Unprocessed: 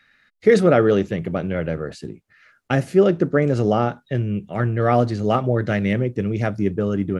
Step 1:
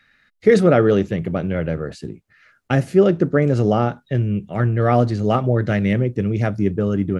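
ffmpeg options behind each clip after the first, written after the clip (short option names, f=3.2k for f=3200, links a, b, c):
-af "lowshelf=f=200:g=4.5"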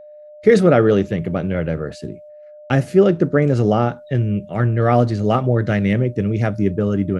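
-af "agate=range=-21dB:threshold=-49dB:ratio=16:detection=peak,aeval=exprs='val(0)+0.0112*sin(2*PI*600*n/s)':c=same,volume=1dB"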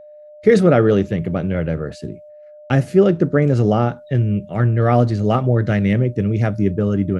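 -af "equalizer=f=80:t=o:w=3:g=3,volume=-1dB"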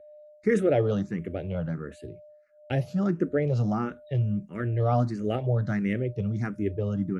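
-filter_complex "[0:a]asplit=2[a][b];[b]afreqshift=1.5[c];[a][c]amix=inputs=2:normalize=1,volume=-7.5dB"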